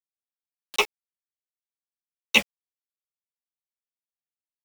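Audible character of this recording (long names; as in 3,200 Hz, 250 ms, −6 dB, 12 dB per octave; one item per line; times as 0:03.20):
phaser sweep stages 12, 0.64 Hz, lowest notch 800–3,100 Hz
a quantiser's noise floor 6 bits, dither none
a shimmering, thickened sound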